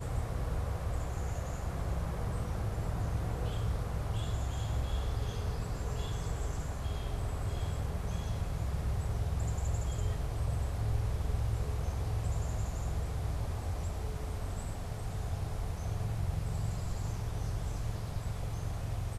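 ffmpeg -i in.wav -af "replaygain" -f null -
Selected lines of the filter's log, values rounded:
track_gain = +24.2 dB
track_peak = 0.061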